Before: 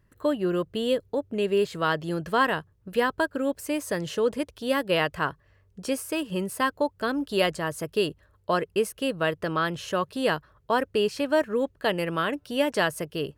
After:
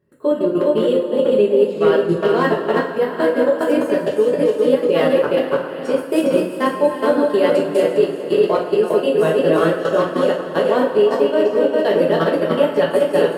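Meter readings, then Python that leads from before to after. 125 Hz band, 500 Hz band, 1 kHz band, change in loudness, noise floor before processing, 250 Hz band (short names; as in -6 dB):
+6.5 dB, +12.5 dB, +5.5 dB, +10.0 dB, -64 dBFS, +9.5 dB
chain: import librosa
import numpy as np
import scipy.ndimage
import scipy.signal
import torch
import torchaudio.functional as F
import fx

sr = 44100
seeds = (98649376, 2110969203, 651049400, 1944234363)

p1 = fx.reverse_delay_fb(x, sr, ms=174, feedback_pct=63, wet_db=-2.5)
p2 = fx.transient(p1, sr, attack_db=5, sustain_db=-6)
p3 = fx.dereverb_blind(p2, sr, rt60_s=1.1)
p4 = fx.peak_eq(p3, sr, hz=420.0, db=13.0, octaves=1.9)
p5 = p4 + fx.echo_feedback(p4, sr, ms=407, feedback_pct=29, wet_db=-7, dry=0)
p6 = fx.level_steps(p5, sr, step_db=17)
p7 = np.clip(p6, -10.0 ** (-10.0 / 20.0), 10.0 ** (-10.0 / 20.0))
p8 = scipy.signal.sosfilt(scipy.signal.butter(2, 74.0, 'highpass', fs=sr, output='sos'), p7)
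p9 = fx.notch(p8, sr, hz=6100.0, q=11.0)
p10 = fx.rev_double_slope(p9, sr, seeds[0], early_s=0.36, late_s=4.0, knee_db=-18, drr_db=-3.5)
y = F.gain(torch.from_numpy(p10), -2.0).numpy()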